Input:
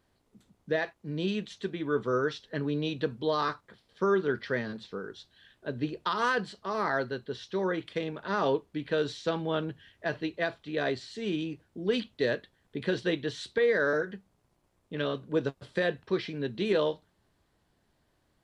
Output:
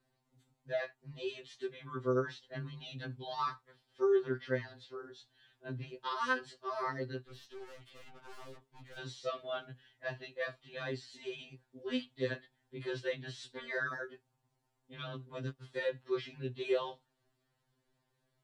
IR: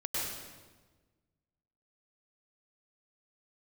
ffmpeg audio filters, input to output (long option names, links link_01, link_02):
-filter_complex "[0:a]asplit=3[link_01][link_02][link_03];[link_01]afade=type=out:start_time=7.2:duration=0.02[link_04];[link_02]aeval=exprs='(tanh(141*val(0)+0.3)-tanh(0.3))/141':channel_layout=same,afade=type=in:start_time=7.2:duration=0.02,afade=type=out:start_time=8.97:duration=0.02[link_05];[link_03]afade=type=in:start_time=8.97:duration=0.02[link_06];[link_04][link_05][link_06]amix=inputs=3:normalize=0,afftfilt=real='re*2.45*eq(mod(b,6),0)':imag='im*2.45*eq(mod(b,6),0)':win_size=2048:overlap=0.75,volume=-5dB"